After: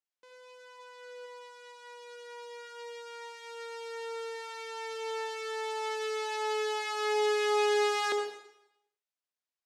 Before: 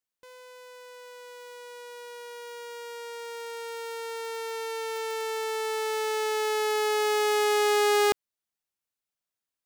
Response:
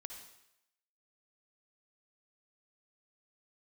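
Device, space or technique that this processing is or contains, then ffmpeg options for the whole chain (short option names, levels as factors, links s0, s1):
supermarket ceiling speaker: -filter_complex "[0:a]highpass=310,lowpass=6800[s0];[1:a]atrim=start_sample=2205[s1];[s0][s1]afir=irnorm=-1:irlink=0,asplit=3[s2][s3][s4];[s2]afade=t=out:st=0.78:d=0.02[s5];[s3]equalizer=f=880:t=o:w=3:g=4.5,afade=t=in:st=0.78:d=0.02,afade=t=out:st=1.25:d=0.02[s6];[s4]afade=t=in:st=1.25:d=0.02[s7];[s5][s6][s7]amix=inputs=3:normalize=0"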